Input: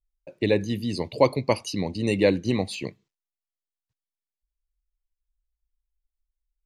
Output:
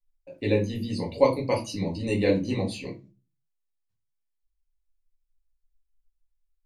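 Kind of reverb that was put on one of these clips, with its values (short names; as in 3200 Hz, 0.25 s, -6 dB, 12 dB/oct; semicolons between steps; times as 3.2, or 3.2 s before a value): shoebox room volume 120 m³, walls furnished, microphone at 2 m; gain -8 dB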